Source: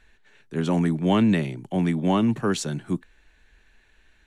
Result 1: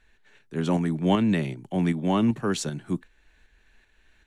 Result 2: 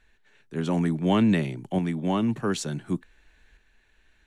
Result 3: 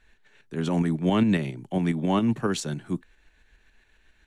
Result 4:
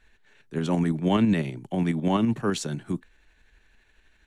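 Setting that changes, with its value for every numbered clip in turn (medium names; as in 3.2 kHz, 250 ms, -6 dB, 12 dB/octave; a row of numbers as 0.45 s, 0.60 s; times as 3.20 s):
tremolo, rate: 2.6 Hz, 0.56 Hz, 7.3 Hz, 12 Hz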